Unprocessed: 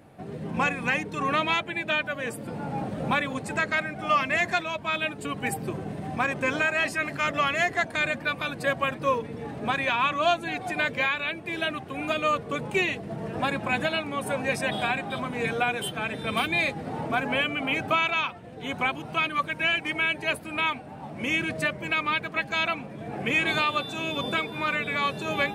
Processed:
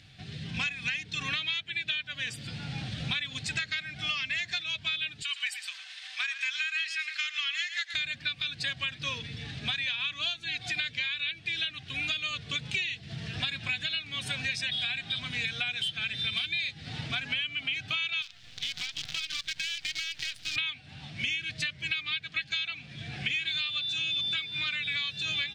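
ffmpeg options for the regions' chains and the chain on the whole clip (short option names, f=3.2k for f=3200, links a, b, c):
-filter_complex "[0:a]asettb=1/sr,asplit=3[a][b][c];[a]atrim=end=5.224[d];[b]atrim=start=5.22:end=7.94,asetpts=PTS-STARTPTS,afade=t=in:d=0.004:c=qsin,afade=t=out:st=2.716:d=0.004:c=qsin,highpass=f=1.1k:w=0.5412,highpass=f=1.1k:w=1.3066,aecho=1:1:111:0.237,atrim=end_sample=119952[e];[c]atrim=start=7.936[f];[d][e]acrossfade=d=0.004:c1=hsin:c2=qsin[g];[g][f]acrossfade=d=0.004:c1=qsin:c2=hsin,asettb=1/sr,asplit=3[h][i][j];[h]atrim=end=18.224[k];[i]atrim=start=18.22:end=20.56,asetpts=PTS-STARTPTS,afade=t=in:d=0.004:c=qsin,afade=t=out:st=2.336:d=0.004:c=qsin,lowshelf=f=350:g=-7.5,acompressor=threshold=-35dB:ratio=20:attack=3.2:release=140:knee=1:detection=peak,acrusher=bits=7:dc=4:mix=0:aa=0.000001[l];[j]atrim=start=20.556[m];[k][l]acrossfade=d=0.004:c1=hsin:c2=qsin[n];[n][m]acrossfade=d=0.004:c1=qsin:c2=hsin,firequalizer=gain_entry='entry(120,0);entry(200,-12);entry(420,-20);entry(810,-23);entry(1600,-2);entry(3500,14);entry(5100,11);entry(11000,-13)':delay=0.05:min_phase=1,acompressor=threshold=-31dB:ratio=10,equalizer=f=740:w=6.8:g=9,volume=2.5dB"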